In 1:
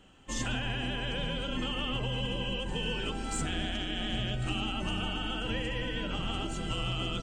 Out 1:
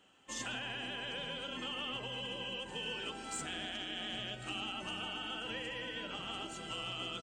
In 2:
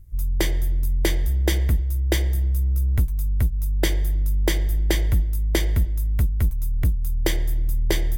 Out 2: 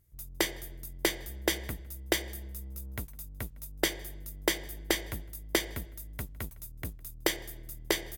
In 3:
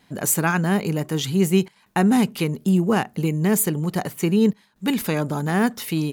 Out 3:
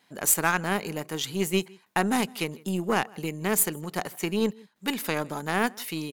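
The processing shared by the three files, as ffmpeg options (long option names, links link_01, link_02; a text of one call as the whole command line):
ffmpeg -i in.wav -filter_complex "[0:a]highpass=frequency=490:poles=1,asplit=2[link_01][link_02];[link_02]adelay=157.4,volume=-22dB,highshelf=frequency=4000:gain=-3.54[link_03];[link_01][link_03]amix=inputs=2:normalize=0,aeval=exprs='0.447*(cos(1*acos(clip(val(0)/0.447,-1,1)))-cos(1*PI/2))+0.0158*(cos(4*acos(clip(val(0)/0.447,-1,1)))-cos(4*PI/2))+0.0141*(cos(6*acos(clip(val(0)/0.447,-1,1)))-cos(6*PI/2))+0.0251*(cos(7*acos(clip(val(0)/0.447,-1,1)))-cos(7*PI/2))':channel_layout=same" out.wav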